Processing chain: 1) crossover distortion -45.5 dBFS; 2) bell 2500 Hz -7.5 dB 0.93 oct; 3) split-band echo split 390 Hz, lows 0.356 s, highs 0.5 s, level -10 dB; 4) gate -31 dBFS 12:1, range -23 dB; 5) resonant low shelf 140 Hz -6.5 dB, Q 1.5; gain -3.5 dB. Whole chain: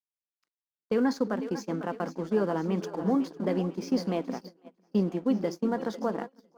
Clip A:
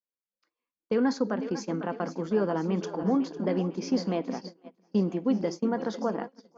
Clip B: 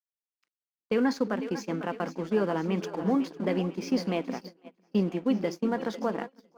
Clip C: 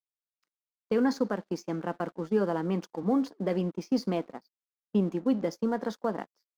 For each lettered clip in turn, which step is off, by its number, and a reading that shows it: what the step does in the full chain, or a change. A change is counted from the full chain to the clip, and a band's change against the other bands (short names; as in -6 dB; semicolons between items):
1, distortion -22 dB; 2, 2 kHz band +3.5 dB; 3, momentary loudness spread change +1 LU